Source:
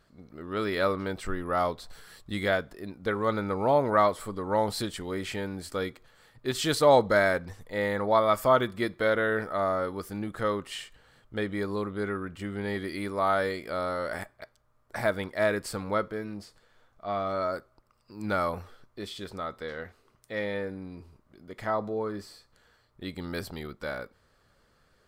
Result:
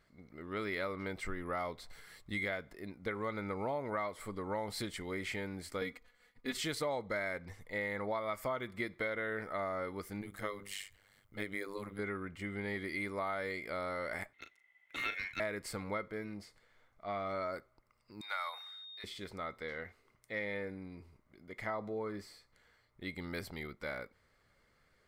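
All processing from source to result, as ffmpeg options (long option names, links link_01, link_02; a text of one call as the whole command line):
ffmpeg -i in.wav -filter_complex "[0:a]asettb=1/sr,asplit=3[link_01][link_02][link_03];[link_01]atrim=end=5.814[link_04];[link_02]atrim=start=5.81:end=6.57,asetpts=PTS-STARTPTS,afade=type=in:duration=0.004:curve=qsin,afade=type=out:start_time=0.756:duration=0.004:curve=qsin,agate=range=-33dB:threshold=-53dB:ratio=3:release=100:detection=peak,aecho=1:1:4.1:0.89,atrim=end_sample=33516[link_05];[link_03]atrim=start=6.566[link_06];[link_04][link_05]acrossfade=duration=0.004:curve1=hsin:curve2=qsin[link_07];[link_07][link_06]acrossfade=duration=0.004:curve1=qsin:curve2=hsin,asettb=1/sr,asplit=3[link_08][link_09][link_10];[link_08]atrim=end=10.214[link_11];[link_09]atrim=start=10.21:end=11.99,asetpts=PTS-STARTPTS,afade=type=in:duration=0.004:curve=qsin,afade=type=out:start_time=1.776:duration=0.004:curve=qsin,aemphasis=mode=production:type=50kf,bandreject=frequency=50:width_type=h:width=6,bandreject=frequency=100:width_type=h:width=6,bandreject=frequency=150:width_type=h:width=6,bandreject=frequency=200:width_type=h:width=6,bandreject=frequency=250:width_type=h:width=6,bandreject=frequency=300:width_type=h:width=6,bandreject=frequency=350:width_type=h:width=6,bandreject=frequency=400:width_type=h:width=6,bandreject=frequency=450:width_type=h:width=6,tremolo=f=99:d=0.947[link_12];[link_10]atrim=start=11.986[link_13];[link_11][link_12]acrossfade=duration=0.004:curve1=hsin:curve2=qsin[link_14];[link_14][link_13]acrossfade=duration=0.004:curve1=qsin:curve2=hsin,asettb=1/sr,asplit=3[link_15][link_16][link_17];[link_15]atrim=end=14.334[link_18];[link_16]atrim=start=14.33:end=15.4,asetpts=PTS-STARTPTS,afade=type=in:duration=0.004:curve=qsin,afade=type=out:start_time=1.066:duration=0.004:curve=qsin,aeval=exprs='val(0)*sin(2*PI*2000*n/s)':channel_layout=same,asplit=2[link_19][link_20];[link_20]adelay=38,volume=-8.5dB[link_21];[link_19][link_21]amix=inputs=2:normalize=0,atrim=end_sample=47187[link_22];[link_17]atrim=start=15.396[link_23];[link_18][link_22]acrossfade=duration=0.004:curve1=hsin:curve2=qsin[link_24];[link_24][link_23]acrossfade=duration=0.004:curve1=qsin:curve2=hsin,asettb=1/sr,asplit=3[link_25][link_26][link_27];[link_25]atrim=end=18.214[link_28];[link_26]atrim=start=18.21:end=19.04,asetpts=PTS-STARTPTS,afade=type=in:duration=0.004:curve=qsin,afade=type=out:start_time=0.826:duration=0.004:curve=qsin,highpass=frequency=840:width=0.5412,highpass=frequency=840:width=1.3066,aeval=exprs='val(0)+0.00891*sin(2*PI*3700*n/s)':channel_layout=same[link_29];[link_27]atrim=start=19.036[link_30];[link_28][link_29]acrossfade=duration=0.004:curve1=hsin:curve2=qsin[link_31];[link_31][link_30]acrossfade=duration=0.004:curve1=qsin:curve2=hsin,equalizer=frequency=2100:width=7.8:gain=14.5,acompressor=threshold=-27dB:ratio=6,volume=-6.5dB" out.wav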